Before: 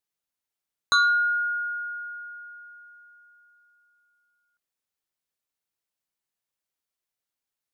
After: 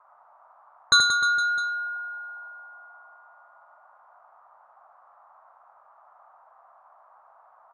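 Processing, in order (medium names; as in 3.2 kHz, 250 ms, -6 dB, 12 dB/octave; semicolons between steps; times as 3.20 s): level-controlled noise filter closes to 1.7 kHz, open at -23 dBFS; graphic EQ 125/1000/8000 Hz +5/-10/+5 dB; band noise 640–1300 Hz -64 dBFS; on a send: reverse bouncing-ball echo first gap 80 ms, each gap 1.25×, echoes 5; on the sum: spring tank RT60 1.5 s, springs 59 ms, chirp 50 ms, DRR 19 dB; trim +6 dB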